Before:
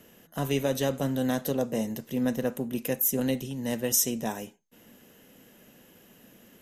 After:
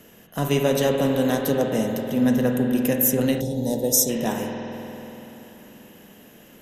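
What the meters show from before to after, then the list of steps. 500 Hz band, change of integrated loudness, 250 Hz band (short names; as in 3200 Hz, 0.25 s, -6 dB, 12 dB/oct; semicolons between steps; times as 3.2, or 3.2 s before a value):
+7.5 dB, +6.5 dB, +7.5 dB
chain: spring tank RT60 3.7 s, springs 48 ms, chirp 25 ms, DRR 2 dB; spectral gain 3.41–4.09, 960–3300 Hz -18 dB; gain +5 dB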